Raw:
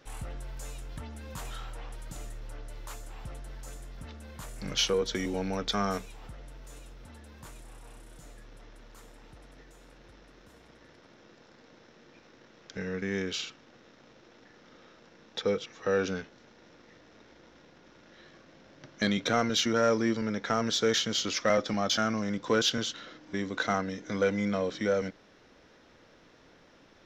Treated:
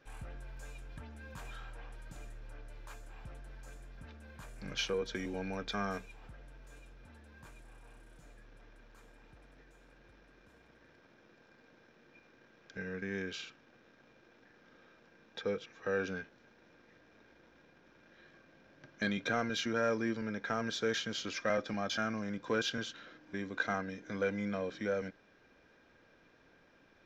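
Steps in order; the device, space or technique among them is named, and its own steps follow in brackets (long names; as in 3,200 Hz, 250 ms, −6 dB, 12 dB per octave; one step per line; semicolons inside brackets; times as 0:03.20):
inside a helmet (high-shelf EQ 4,800 Hz −8 dB; hollow resonant body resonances 1,600/2,400 Hz, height 14 dB, ringing for 60 ms)
level −7 dB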